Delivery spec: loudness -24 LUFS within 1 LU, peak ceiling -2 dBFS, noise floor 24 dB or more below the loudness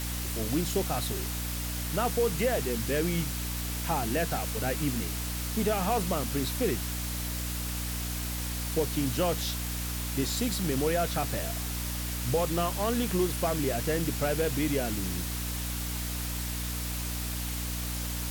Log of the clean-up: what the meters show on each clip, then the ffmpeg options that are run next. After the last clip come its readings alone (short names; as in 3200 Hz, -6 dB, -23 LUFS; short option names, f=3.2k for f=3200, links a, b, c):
hum 60 Hz; harmonics up to 300 Hz; hum level -33 dBFS; noise floor -34 dBFS; noise floor target -54 dBFS; loudness -30.0 LUFS; peak -15.0 dBFS; loudness target -24.0 LUFS
-> -af "bandreject=f=60:t=h:w=4,bandreject=f=120:t=h:w=4,bandreject=f=180:t=h:w=4,bandreject=f=240:t=h:w=4,bandreject=f=300:t=h:w=4"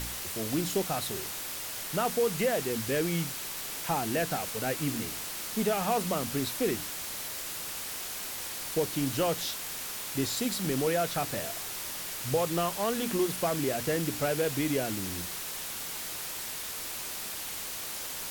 hum none; noise floor -38 dBFS; noise floor target -55 dBFS
-> -af "afftdn=nr=17:nf=-38"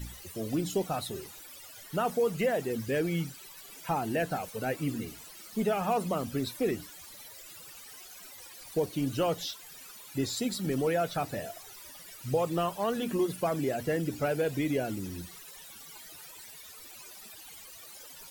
noise floor -49 dBFS; noise floor target -56 dBFS
-> -af "afftdn=nr=7:nf=-49"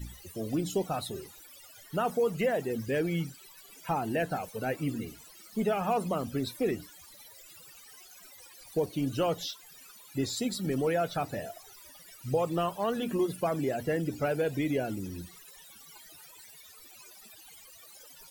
noise floor -53 dBFS; noise floor target -56 dBFS
-> -af "afftdn=nr=6:nf=-53"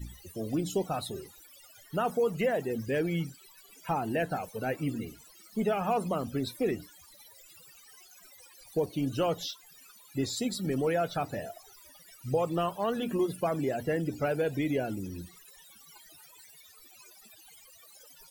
noise floor -56 dBFS; loudness -32.0 LUFS; peak -17.5 dBFS; loudness target -24.0 LUFS
-> -af "volume=8dB"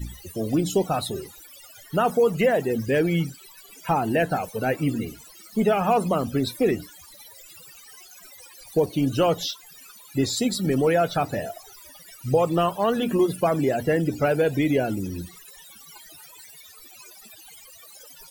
loudness -24.0 LUFS; peak -9.5 dBFS; noise floor -48 dBFS